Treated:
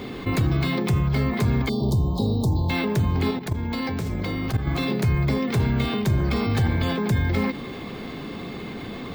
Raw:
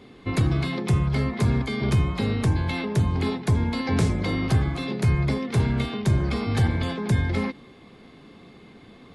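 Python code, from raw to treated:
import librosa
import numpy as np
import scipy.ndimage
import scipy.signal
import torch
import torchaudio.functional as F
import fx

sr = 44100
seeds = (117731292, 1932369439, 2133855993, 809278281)

y = fx.ellip_bandstop(x, sr, low_hz=930.0, high_hz=3900.0, order=3, stop_db=60, at=(1.69, 2.7))
y = fx.level_steps(y, sr, step_db=17, at=(3.31, 4.67))
y = np.repeat(scipy.signal.resample_poly(y, 1, 2), 2)[:len(y)]
y = fx.env_flatten(y, sr, amount_pct=50)
y = y * 10.0 ** (-1.5 / 20.0)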